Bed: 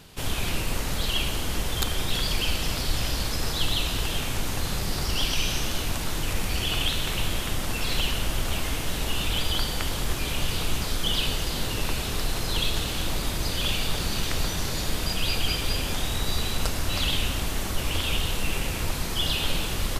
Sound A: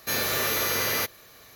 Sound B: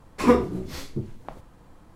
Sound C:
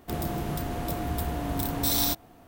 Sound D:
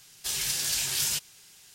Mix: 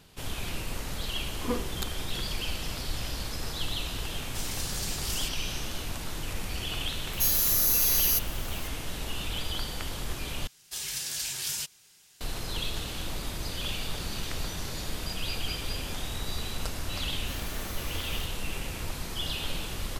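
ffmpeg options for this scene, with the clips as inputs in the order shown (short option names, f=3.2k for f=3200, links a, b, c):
-filter_complex "[4:a]asplit=2[a][b];[1:a]asplit=2[c][d];[0:a]volume=-7dB[e];[c]aexciter=amount=5.1:drive=9.5:freq=4.3k[f];[e]asplit=2[g][h];[g]atrim=end=10.474[i];[b]atrim=end=1.74,asetpts=PTS-STARTPTS,volume=-5dB[j];[h]atrim=start=12.206[k];[2:a]atrim=end=1.95,asetpts=PTS-STARTPTS,volume=-14dB,afade=t=in:d=0.004:c=hsin,afade=t=out:st=1.946:d=0.004:c=hsin,adelay=1210[l];[a]atrim=end=1.74,asetpts=PTS-STARTPTS,volume=-8dB,afade=t=in:d=0.004:c=hsin,afade=t=out:st=1.736:d=0.004:c=hsin,adelay=4100[m];[f]atrim=end=1.55,asetpts=PTS-STARTPTS,volume=-16dB,afade=t=in:d=0.004:c=hsin,afade=t=out:st=1.546:d=0.004:c=hsin,adelay=7130[n];[d]atrim=end=1.55,asetpts=PTS-STARTPTS,volume=-18dB,afade=t=in:d=0.004:c=hsin,afade=t=out:st=1.546:d=0.004:c=hsin,adelay=17200[o];[i][j]acrossfade=d=0.004:c1=hsin:c2=hsin[p];[p][k]acrossfade=d=0.004:c1=hsin:c2=hsin[q];[q][l][m][n][o]amix=inputs=5:normalize=0"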